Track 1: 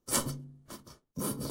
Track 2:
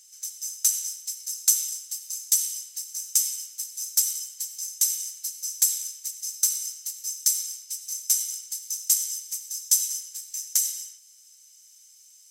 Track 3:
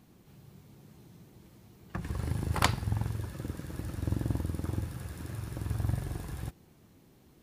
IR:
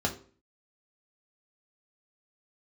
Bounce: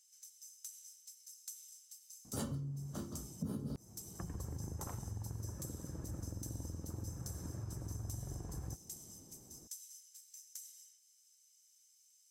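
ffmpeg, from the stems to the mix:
-filter_complex "[0:a]lowshelf=f=240:g=11,adelay=2250,volume=0.668,asplit=2[s0][s1];[s1]volume=0.376[s2];[1:a]volume=0.178[s3];[2:a]lowpass=1000,acompressor=threshold=0.00708:ratio=2,alimiter=level_in=3.16:limit=0.0631:level=0:latency=1:release=26,volume=0.316,adelay=2250,volume=1[s4];[s0][s3]amix=inputs=2:normalize=0,acompressor=threshold=0.00141:ratio=2,volume=1[s5];[3:a]atrim=start_sample=2205[s6];[s2][s6]afir=irnorm=-1:irlink=0[s7];[s4][s5][s7]amix=inputs=3:normalize=0,acompressor=threshold=0.0141:ratio=12"

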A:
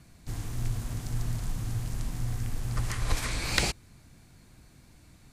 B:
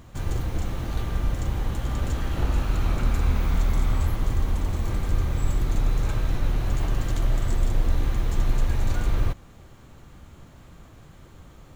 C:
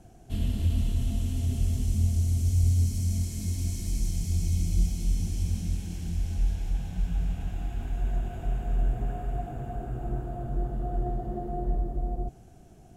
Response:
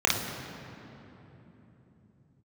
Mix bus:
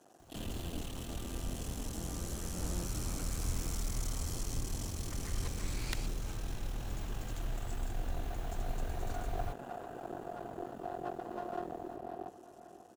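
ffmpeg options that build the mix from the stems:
-filter_complex "[0:a]aeval=exprs='0.596*(cos(1*acos(clip(val(0)/0.596,-1,1)))-cos(1*PI/2))+0.237*(cos(5*acos(clip(val(0)/0.596,-1,1)))-cos(5*PI/2))+0.211*(cos(7*acos(clip(val(0)/0.596,-1,1)))-cos(7*PI/2))':c=same,acompressor=threshold=0.0398:ratio=6,adelay=2350,volume=0.355[s0];[1:a]highshelf=f=5500:g=9,adelay=200,volume=0.168[s1];[2:a]aeval=exprs='max(val(0),0)':c=same,highpass=350,bandreject=f=2200:w=5.6,volume=1.12,asplit=2[s2][s3];[s3]volume=0.224,aecho=0:1:540|1080|1620|2160|2700|3240|3780|4320:1|0.52|0.27|0.141|0.0731|0.038|0.0198|0.0103[s4];[s0][s1][s2][s4]amix=inputs=4:normalize=0"

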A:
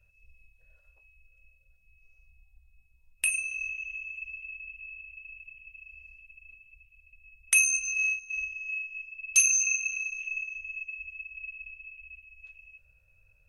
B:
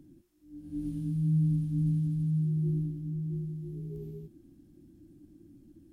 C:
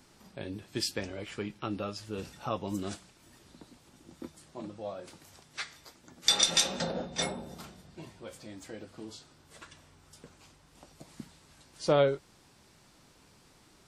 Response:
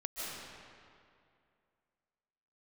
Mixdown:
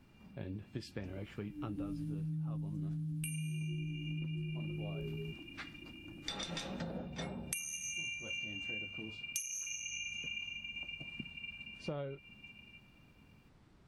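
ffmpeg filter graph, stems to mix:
-filter_complex "[0:a]highshelf=f=7900:g=10.5,aeval=exprs='val(0)*sin(2*PI*210*n/s)':c=same,volume=0.531,asplit=2[s0][s1];[s1]volume=0.282[s2];[1:a]adelay=1050,volume=1.26[s3];[2:a]bass=f=250:g=10,treble=f=4000:g=-13,volume=0.422[s4];[3:a]atrim=start_sample=2205[s5];[s2][s5]afir=irnorm=-1:irlink=0[s6];[s0][s3][s4][s6]amix=inputs=4:normalize=0,acompressor=threshold=0.0141:ratio=12"

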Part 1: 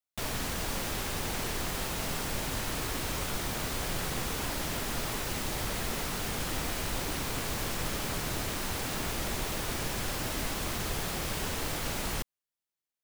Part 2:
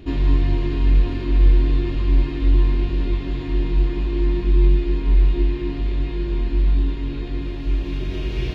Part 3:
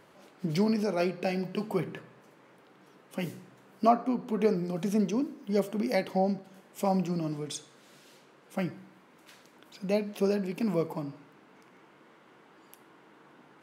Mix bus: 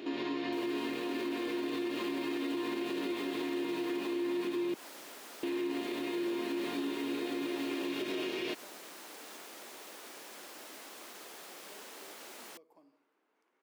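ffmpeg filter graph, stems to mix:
-filter_complex "[0:a]adelay=350,volume=0.211[s0];[1:a]volume=1.41,asplit=3[s1][s2][s3];[s1]atrim=end=4.74,asetpts=PTS-STARTPTS,afade=t=out:st=4.736:d=0.004:c=hsin[s4];[s2]atrim=start=4.74:end=5.43,asetpts=PTS-STARTPTS,volume=0[s5];[s3]atrim=start=5.43,asetpts=PTS-STARTPTS,afade=t=in:d=0.004:c=hsin[s6];[s4][s5][s6]concat=n=3:v=0:a=1[s7];[2:a]acompressor=threshold=0.0178:ratio=12,adelay=1800,volume=0.106[s8];[s0][s7][s8]amix=inputs=3:normalize=0,highpass=f=290:w=0.5412,highpass=f=290:w=1.3066,alimiter=level_in=1.5:limit=0.0631:level=0:latency=1:release=95,volume=0.668"

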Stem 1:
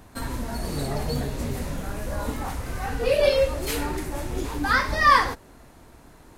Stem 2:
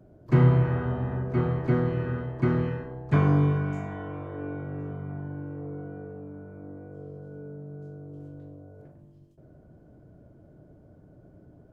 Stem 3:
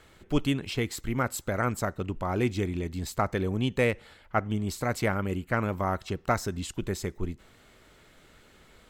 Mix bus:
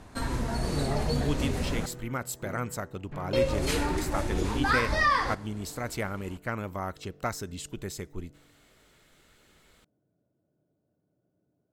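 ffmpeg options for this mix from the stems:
-filter_complex "[0:a]lowpass=8800,acompressor=threshold=0.0891:ratio=6,volume=1,asplit=3[s0][s1][s2];[s0]atrim=end=1.86,asetpts=PTS-STARTPTS,afade=t=out:st=1.856:d=0.004:c=hsin[s3];[s1]atrim=start=1.86:end=3.33,asetpts=PTS-STARTPTS,volume=0[s4];[s2]atrim=start=3.33,asetpts=PTS-STARTPTS,afade=t=in:d=0.004:c=hsin[s5];[s3][s4][s5]concat=n=3:v=0:a=1,asplit=2[s6][s7];[s7]volume=0.0944[s8];[1:a]agate=range=0.398:threshold=0.00794:ratio=16:detection=peak,highpass=130,asoftclip=type=tanh:threshold=0.0841,volume=0.211[s9];[2:a]equalizer=f=14000:t=o:w=2.5:g=6,adelay=950,volume=0.501[s10];[s8]aecho=0:1:127:1[s11];[s6][s9][s10][s11]amix=inputs=4:normalize=0"

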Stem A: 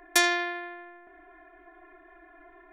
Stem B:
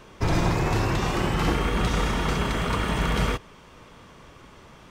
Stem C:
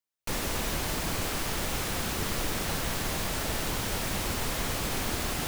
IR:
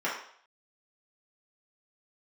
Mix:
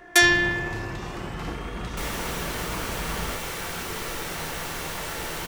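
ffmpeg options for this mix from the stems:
-filter_complex "[0:a]volume=1.06,asplit=2[s0][s1];[s1]volume=0.501[s2];[1:a]volume=0.335[s3];[2:a]adelay=1700,volume=0.668,asplit=2[s4][s5];[s5]volume=0.376[s6];[3:a]atrim=start_sample=2205[s7];[s2][s6]amix=inputs=2:normalize=0[s8];[s8][s7]afir=irnorm=-1:irlink=0[s9];[s0][s3][s4][s9]amix=inputs=4:normalize=0"

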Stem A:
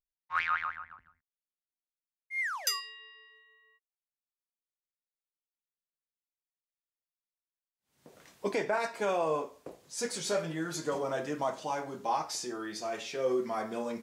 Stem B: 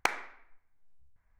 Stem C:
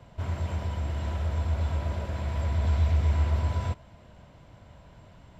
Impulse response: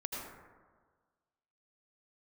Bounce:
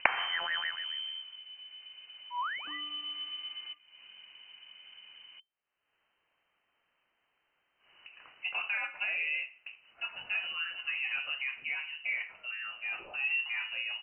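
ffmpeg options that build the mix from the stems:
-filter_complex "[0:a]alimiter=limit=0.0668:level=0:latency=1:release=76,volume=0.841[s0];[1:a]dynaudnorm=f=120:g=3:m=3.55,volume=1.26[s1];[2:a]acompressor=threshold=0.00562:ratio=1.5,volume=1.5,afade=t=out:st=0.8:d=0.47:silence=0.251189,afade=t=in:st=2.45:d=0.48:silence=0.398107[s2];[s0][s1][s2]amix=inputs=3:normalize=0,acompressor=mode=upward:threshold=0.00562:ratio=2.5,lowpass=f=2600:t=q:w=0.5098,lowpass=f=2600:t=q:w=0.6013,lowpass=f=2600:t=q:w=0.9,lowpass=f=2600:t=q:w=2.563,afreqshift=-3100"

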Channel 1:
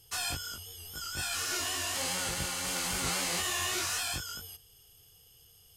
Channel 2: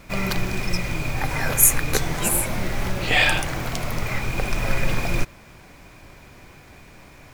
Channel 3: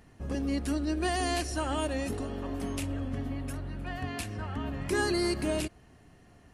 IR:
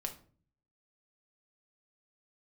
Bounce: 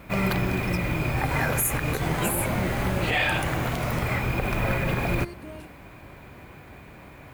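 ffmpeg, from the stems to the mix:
-filter_complex "[0:a]volume=0.562[s0];[1:a]equalizer=f=5500:t=o:w=0.45:g=-6,volume=1.33[s1];[2:a]volume=0.282[s2];[s0][s1][s2]amix=inputs=3:normalize=0,highpass=47,equalizer=f=6800:w=0.54:g=-9.5,alimiter=limit=0.188:level=0:latency=1:release=66"

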